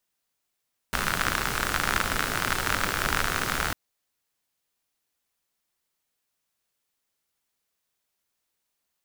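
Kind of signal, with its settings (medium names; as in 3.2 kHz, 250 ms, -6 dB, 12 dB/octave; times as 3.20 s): rain from filtered ticks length 2.80 s, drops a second 64, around 1.4 kHz, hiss -1.5 dB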